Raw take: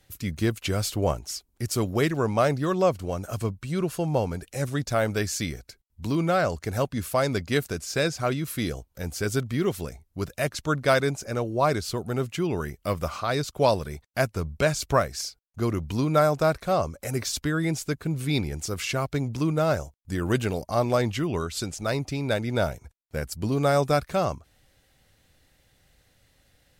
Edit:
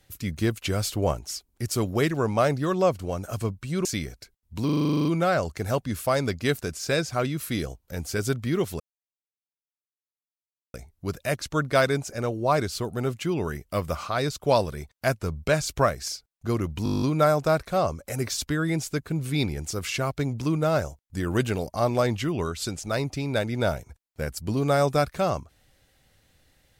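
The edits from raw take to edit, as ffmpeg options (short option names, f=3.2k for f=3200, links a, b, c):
-filter_complex "[0:a]asplit=22[a][b][c][d][e][f][g][h][i][j][k][l][m][n][o][p][q][r][s][t][u][v];[a]atrim=end=3.852[w];[b]atrim=start=5.318:end=6.162[x];[c]atrim=start=6.118:end=6.162[y];[d]atrim=start=6.118:end=6.162[z];[e]atrim=start=6.118:end=6.162[aa];[f]atrim=start=6.118:end=6.162[ab];[g]atrim=start=6.118:end=6.162[ac];[h]atrim=start=6.118:end=6.162[ad];[i]atrim=start=6.118:end=6.162[ae];[j]atrim=start=6.118:end=6.162[af];[k]atrim=start=6.118:end=6.162[ag];[l]atrim=start=6.118:end=9.87,asetpts=PTS-STARTPTS,afade=t=out:st=3.748:d=0.004:c=hsin,apad=pad_dur=1.94[ah];[m]atrim=start=9.87:end=15.992,asetpts=PTS-STARTPTS,afade=t=in:d=0.004:c=hsin[ai];[n]atrim=start=15.968:end=15.992[aj];[o]atrim=start=15.968:end=15.992[ak];[p]atrim=start=15.968:end=15.992[al];[q]atrim=start=15.968:end=15.992[am];[r]atrim=start=15.968:end=15.992[an];[s]atrim=start=15.968:end=15.992[ao];[t]atrim=start=15.968:end=15.992[ap];[u]atrim=start=15.968:end=15.992[aq];[v]atrim=start=15.968[ar];[w][x]acrossfade=d=0.004:c1=hsin:c2=hsin[as];[as][y]acrossfade=d=0.004:c1=hsin:c2=hsin[at];[at][z]acrossfade=d=0.004:c1=hsin:c2=hsin[au];[au][aa]acrossfade=d=0.004:c1=hsin:c2=hsin[av];[av][ab]acrossfade=d=0.004:c1=hsin:c2=hsin[aw];[aw][ac]acrossfade=d=0.004:c1=hsin:c2=hsin[ax];[ax][ad]acrossfade=d=0.004:c1=hsin:c2=hsin[ay];[ay][ae]acrossfade=d=0.004:c1=hsin:c2=hsin[az];[az][af]acrossfade=d=0.004:c1=hsin:c2=hsin[ba];[ba][ag]acrossfade=d=0.004:c1=hsin:c2=hsin[bb];[ah][ai]concat=n=2:v=0:a=1[bc];[bb][bc]acrossfade=d=0.004:c1=hsin:c2=hsin[bd];[bd][aj]acrossfade=d=0.004:c1=hsin:c2=hsin[be];[be][ak]acrossfade=d=0.004:c1=hsin:c2=hsin[bf];[bf][al]acrossfade=d=0.004:c1=hsin:c2=hsin[bg];[bg][am]acrossfade=d=0.004:c1=hsin:c2=hsin[bh];[bh][an]acrossfade=d=0.004:c1=hsin:c2=hsin[bi];[bi][ao]acrossfade=d=0.004:c1=hsin:c2=hsin[bj];[bj][ap]acrossfade=d=0.004:c1=hsin:c2=hsin[bk];[bk][aq]acrossfade=d=0.004:c1=hsin:c2=hsin[bl];[bl][ar]acrossfade=d=0.004:c1=hsin:c2=hsin"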